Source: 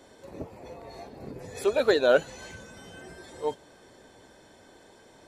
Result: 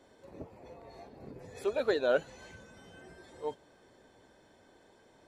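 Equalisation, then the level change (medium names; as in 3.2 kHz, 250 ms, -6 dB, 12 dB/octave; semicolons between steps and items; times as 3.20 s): treble shelf 4.8 kHz -6.5 dB; -7.0 dB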